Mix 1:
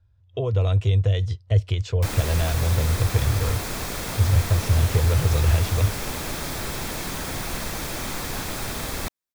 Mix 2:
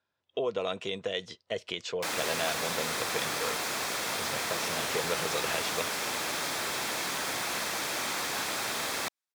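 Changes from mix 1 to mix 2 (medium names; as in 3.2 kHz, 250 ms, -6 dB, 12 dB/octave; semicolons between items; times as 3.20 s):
speech: add resonant low shelf 140 Hz -11 dB, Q 3; master: add frequency weighting A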